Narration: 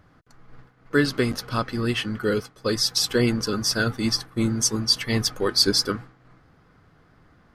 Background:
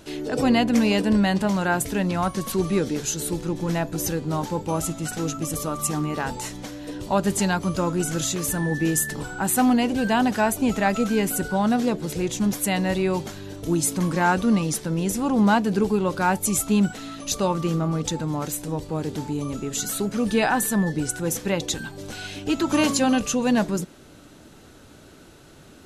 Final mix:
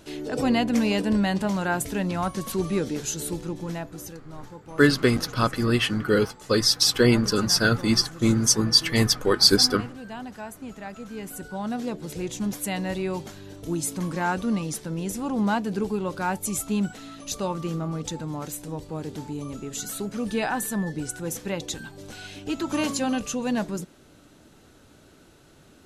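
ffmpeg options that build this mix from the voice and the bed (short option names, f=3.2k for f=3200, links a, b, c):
-filter_complex "[0:a]adelay=3850,volume=2.5dB[a];[1:a]volume=8dB,afade=t=out:st=3.26:d=0.93:silence=0.211349,afade=t=in:st=11.04:d=1.17:silence=0.281838[b];[a][b]amix=inputs=2:normalize=0"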